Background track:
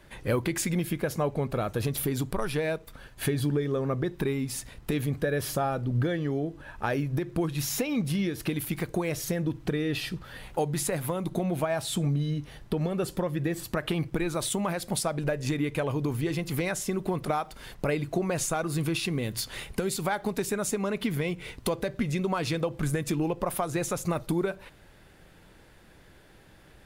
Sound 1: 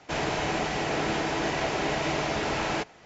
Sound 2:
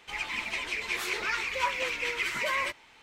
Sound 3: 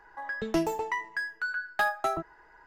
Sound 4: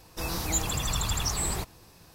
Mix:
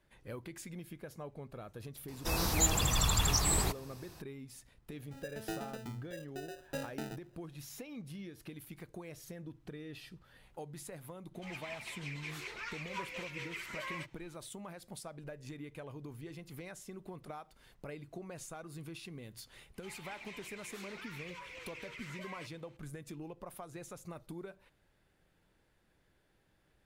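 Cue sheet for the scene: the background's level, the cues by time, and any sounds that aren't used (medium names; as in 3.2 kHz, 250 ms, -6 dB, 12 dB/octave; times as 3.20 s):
background track -18 dB
2.08 s: add 4 -0.5 dB
4.94 s: add 3 -13.5 dB + sample-rate reducer 1.1 kHz
11.34 s: add 2 -13 dB
19.75 s: add 2 -14.5 dB + peak limiter -25.5 dBFS
not used: 1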